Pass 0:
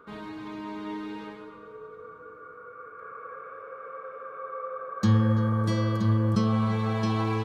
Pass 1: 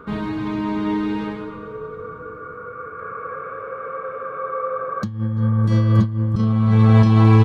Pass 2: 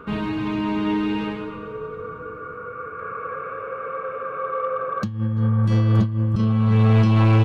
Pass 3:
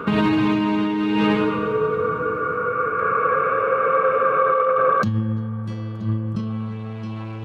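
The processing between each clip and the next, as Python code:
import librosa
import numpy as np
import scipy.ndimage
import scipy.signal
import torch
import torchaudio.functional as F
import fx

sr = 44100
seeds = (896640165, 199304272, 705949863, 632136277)

y1 = fx.bass_treble(x, sr, bass_db=10, treble_db=-4)
y1 = fx.over_compress(y1, sr, threshold_db=-20.0, ratio=-0.5)
y1 = F.gain(torch.from_numpy(y1), 6.0).numpy()
y2 = fx.peak_eq(y1, sr, hz=2700.0, db=9.5, octaves=0.29)
y2 = 10.0 ** (-10.5 / 20.0) * np.tanh(y2 / 10.0 ** (-10.5 / 20.0))
y3 = fx.over_compress(y2, sr, threshold_db=-27.0, ratio=-1.0)
y3 = scipy.signal.sosfilt(scipy.signal.butter(2, 110.0, 'highpass', fs=sr, output='sos'), y3)
y3 = F.gain(torch.from_numpy(y3), 6.0).numpy()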